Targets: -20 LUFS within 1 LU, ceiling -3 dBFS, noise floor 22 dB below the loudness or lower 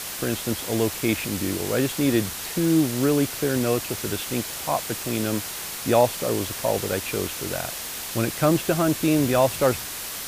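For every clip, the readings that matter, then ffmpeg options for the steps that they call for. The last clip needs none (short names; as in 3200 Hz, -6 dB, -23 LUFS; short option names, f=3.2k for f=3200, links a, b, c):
noise floor -33 dBFS; noise floor target -46 dBFS; loudness -24.0 LUFS; peak -5.5 dBFS; loudness target -20.0 LUFS
-> -af "afftdn=nr=13:nf=-33"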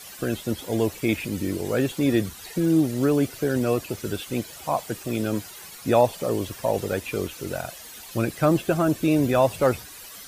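noise floor -42 dBFS; noise floor target -47 dBFS
-> -af "afftdn=nr=6:nf=-42"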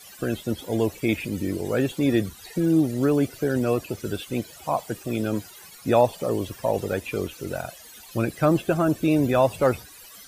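noise floor -46 dBFS; noise floor target -47 dBFS
-> -af "afftdn=nr=6:nf=-46"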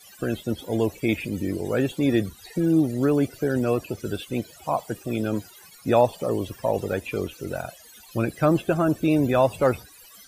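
noise floor -49 dBFS; loudness -25.0 LUFS; peak -6.5 dBFS; loudness target -20.0 LUFS
-> -af "volume=5dB,alimiter=limit=-3dB:level=0:latency=1"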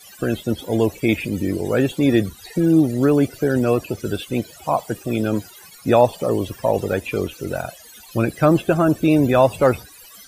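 loudness -20.0 LUFS; peak -3.0 dBFS; noise floor -44 dBFS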